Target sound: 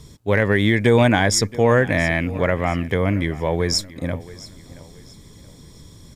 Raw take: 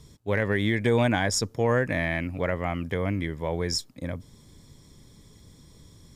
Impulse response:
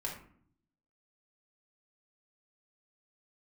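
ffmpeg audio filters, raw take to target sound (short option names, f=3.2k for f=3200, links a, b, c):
-af "aecho=1:1:676|1352|2028:0.112|0.0393|0.0137,volume=7.5dB"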